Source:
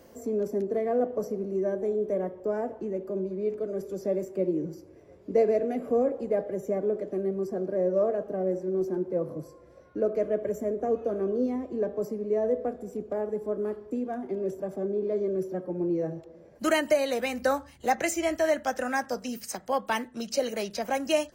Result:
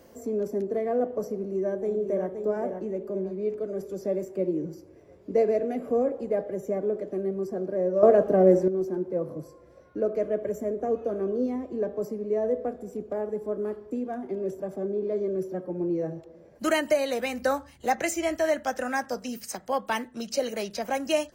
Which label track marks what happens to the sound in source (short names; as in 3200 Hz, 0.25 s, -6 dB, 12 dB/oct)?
1.340000	2.340000	echo throw 0.52 s, feedback 35%, level -6.5 dB
8.030000	8.680000	gain +10.5 dB